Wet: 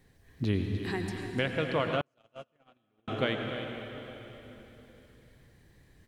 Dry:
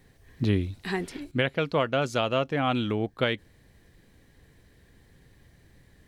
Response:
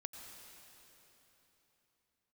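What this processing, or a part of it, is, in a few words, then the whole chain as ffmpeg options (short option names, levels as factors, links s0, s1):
cave: -filter_complex "[0:a]aecho=1:1:298:0.282[s0];[1:a]atrim=start_sample=2205[s1];[s0][s1]afir=irnorm=-1:irlink=0,asettb=1/sr,asplit=3[s2][s3][s4];[s2]atrim=end=2.014[s5];[s3]atrim=start=2.01:end=3.08,asetpts=PTS-STARTPTS,afade=t=in:d=0.004:c=qsin,afade=t=out:st=1.066:d=0.004:c=qsin,agate=range=0.00562:threshold=0.0708:ratio=16:detection=peak[s6];[s4]atrim=start=3.076[s7];[s5][s6]acrossfade=d=0.004:c1=hsin:c2=qsin[s8];[s8][s7]acrossfade=d=0.004:c1=qsin:c2=hsin"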